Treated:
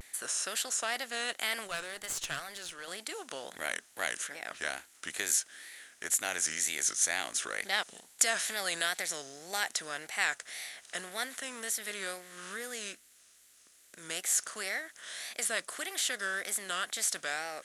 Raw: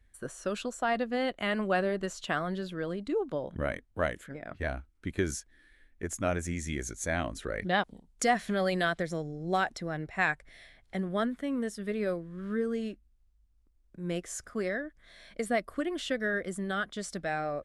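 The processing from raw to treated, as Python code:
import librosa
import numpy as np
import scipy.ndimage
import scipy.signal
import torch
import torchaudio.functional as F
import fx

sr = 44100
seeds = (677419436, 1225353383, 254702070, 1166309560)

y = fx.bin_compress(x, sr, power=0.6)
y = np.diff(y, prepend=0.0)
y = fx.tube_stage(y, sr, drive_db=32.0, bias=0.75, at=(1.68, 2.87))
y = fx.wow_flutter(y, sr, seeds[0], rate_hz=2.1, depth_cents=140.0)
y = fx.peak_eq(y, sr, hz=850.0, db=-14.5, octaves=0.26, at=(12.91, 14.09))
y = y * 10.0 ** (8.0 / 20.0)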